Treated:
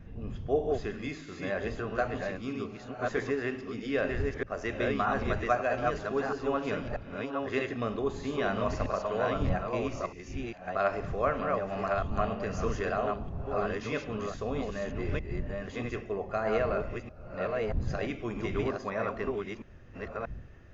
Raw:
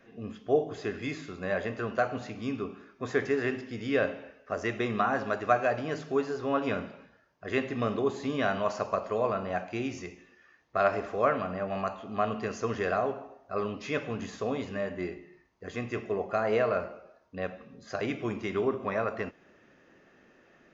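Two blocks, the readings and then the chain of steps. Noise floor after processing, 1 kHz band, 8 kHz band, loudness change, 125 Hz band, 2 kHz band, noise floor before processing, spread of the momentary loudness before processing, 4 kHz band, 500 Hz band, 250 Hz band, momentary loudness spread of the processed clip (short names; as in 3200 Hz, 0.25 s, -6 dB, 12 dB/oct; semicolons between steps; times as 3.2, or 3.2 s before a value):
-47 dBFS, -1.0 dB, n/a, -1.5 dB, +3.5 dB, -1.0 dB, -61 dBFS, 11 LU, -1.0 dB, -1.0 dB, -1.0 dB, 9 LU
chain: reverse delay 0.633 s, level -2.5 dB; wind noise 100 Hz -37 dBFS; gain -3 dB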